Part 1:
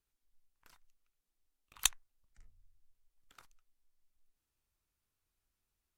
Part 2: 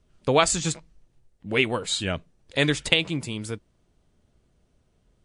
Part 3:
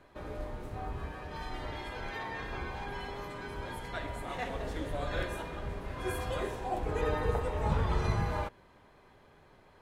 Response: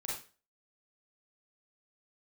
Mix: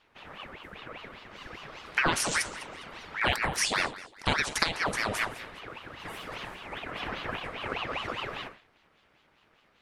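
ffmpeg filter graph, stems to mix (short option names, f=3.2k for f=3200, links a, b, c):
-filter_complex "[0:a]adelay=1500,volume=-11.5dB,asplit=2[a][b];[b]volume=-5.5dB[c];[1:a]acompressor=threshold=-25dB:ratio=5,adelay=1700,volume=3dB,asplit=3[d][e][f];[e]volume=-11.5dB[g];[f]volume=-16dB[h];[2:a]aeval=exprs='val(0)*sin(2*PI*880*n/s)':c=same,volume=-3dB,asplit=3[i][j][k];[i]atrim=end=3.2,asetpts=PTS-STARTPTS,afade=t=out:st=3.196:d=0.004:c=hsin[l];[j]atrim=start=3.2:end=4.73,asetpts=PTS-STARTPTS,volume=0[m];[k]atrim=start=4.73,asetpts=PTS-STARTPTS,afade=t=in:d=0.004:c=hsin[n];[l][m][n]concat=n=3:v=0:a=1,asplit=2[o][p];[p]volume=-4.5dB[q];[3:a]atrim=start_sample=2205[r];[g][q]amix=inputs=2:normalize=0[s];[s][r]afir=irnorm=-1:irlink=0[t];[c][h]amix=inputs=2:normalize=0,aecho=0:1:203|406|609|812:1|0.29|0.0841|0.0244[u];[a][d][o][t][u]amix=inputs=5:normalize=0,aeval=exprs='val(0)*sin(2*PI*1200*n/s+1200*0.75/5*sin(2*PI*5*n/s))':c=same"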